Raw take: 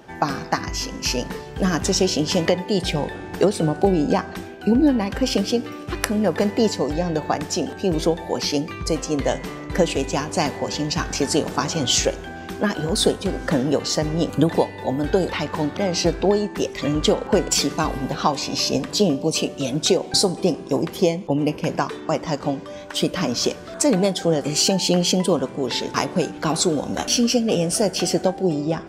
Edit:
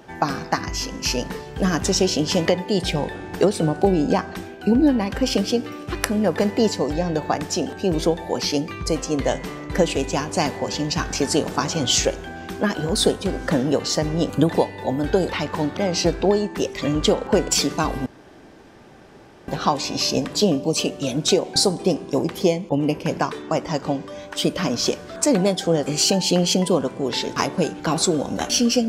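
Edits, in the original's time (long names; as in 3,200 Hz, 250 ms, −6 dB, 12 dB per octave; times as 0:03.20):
0:18.06: splice in room tone 1.42 s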